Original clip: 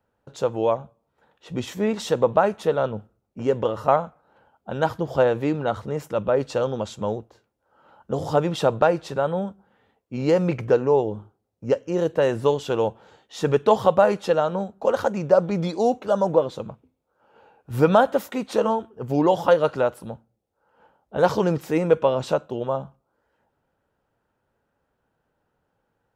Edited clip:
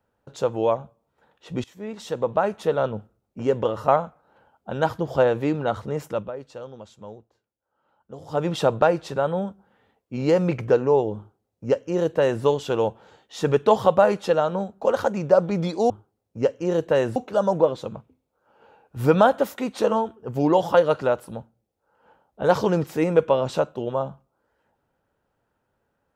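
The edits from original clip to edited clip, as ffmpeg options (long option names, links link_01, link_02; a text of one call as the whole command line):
ffmpeg -i in.wav -filter_complex "[0:a]asplit=6[link_01][link_02][link_03][link_04][link_05][link_06];[link_01]atrim=end=1.64,asetpts=PTS-STARTPTS,afade=type=out:start_time=1.636:duration=0.004:curve=hsin:silence=0.112202[link_07];[link_02]atrim=start=1.64:end=6.32,asetpts=PTS-STARTPTS,afade=type=in:duration=1.17:silence=0.112202,afade=type=out:start_time=4.47:duration=0.21:silence=0.199526[link_08];[link_03]atrim=start=6.32:end=8.27,asetpts=PTS-STARTPTS,volume=-14dB[link_09];[link_04]atrim=start=8.27:end=15.902,asetpts=PTS-STARTPTS,afade=type=in:duration=0.21:silence=0.199526[link_10];[link_05]atrim=start=11.168:end=12.432[link_11];[link_06]atrim=start=15.898[link_12];[link_07][link_08][link_09][link_10]concat=n=4:v=0:a=1[link_13];[link_13][link_11]acrossfade=duration=0.004:curve1=hsin:curve2=hsin[link_14];[link_14][link_12]acrossfade=duration=0.004:curve1=hsin:curve2=hsin" out.wav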